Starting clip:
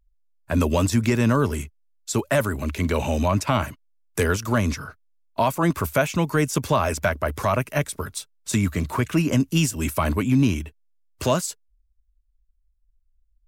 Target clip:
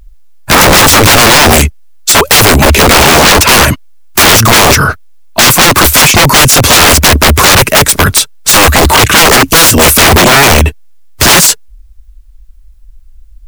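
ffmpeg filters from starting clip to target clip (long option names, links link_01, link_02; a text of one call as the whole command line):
ffmpeg -i in.wav -af "aeval=exprs='(mod(13.3*val(0)+1,2)-1)/13.3':channel_layout=same,apsyclip=32dB,volume=-1.5dB" out.wav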